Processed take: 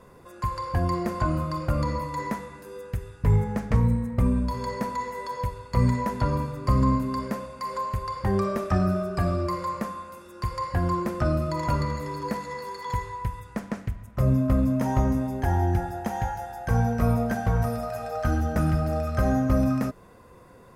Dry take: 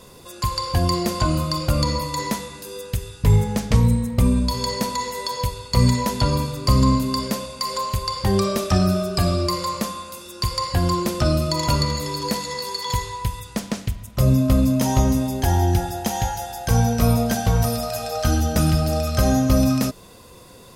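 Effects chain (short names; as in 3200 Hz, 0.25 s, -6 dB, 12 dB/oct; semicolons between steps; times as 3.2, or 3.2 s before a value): resonant high shelf 2500 Hz -11.5 dB, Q 1.5; gain -5 dB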